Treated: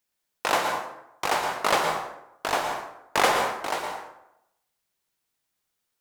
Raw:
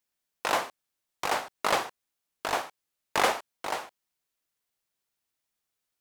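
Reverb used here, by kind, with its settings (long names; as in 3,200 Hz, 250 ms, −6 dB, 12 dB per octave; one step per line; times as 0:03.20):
dense smooth reverb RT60 0.83 s, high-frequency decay 0.6×, pre-delay 100 ms, DRR 3.5 dB
level +3 dB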